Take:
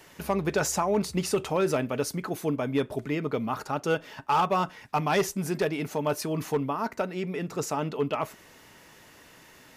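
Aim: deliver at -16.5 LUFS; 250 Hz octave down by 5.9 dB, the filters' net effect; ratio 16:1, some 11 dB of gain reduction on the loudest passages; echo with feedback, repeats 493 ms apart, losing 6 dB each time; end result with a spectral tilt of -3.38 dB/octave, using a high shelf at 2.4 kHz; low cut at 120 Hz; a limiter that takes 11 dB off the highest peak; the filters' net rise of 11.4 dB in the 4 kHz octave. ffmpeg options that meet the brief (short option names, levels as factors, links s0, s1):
-af "highpass=120,equalizer=f=250:t=o:g=-8.5,highshelf=f=2400:g=8,equalizer=f=4000:t=o:g=7.5,acompressor=threshold=0.0398:ratio=16,alimiter=limit=0.0631:level=0:latency=1,aecho=1:1:493|986|1479|1972|2465|2958:0.501|0.251|0.125|0.0626|0.0313|0.0157,volume=7.94"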